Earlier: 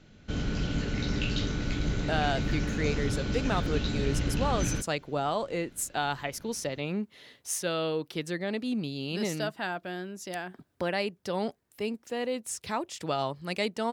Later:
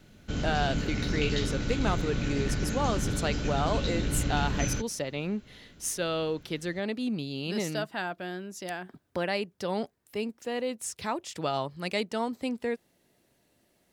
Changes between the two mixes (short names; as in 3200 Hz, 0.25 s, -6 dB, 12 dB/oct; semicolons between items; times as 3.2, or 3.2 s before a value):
speech: entry -1.65 s; background: remove LPF 6800 Hz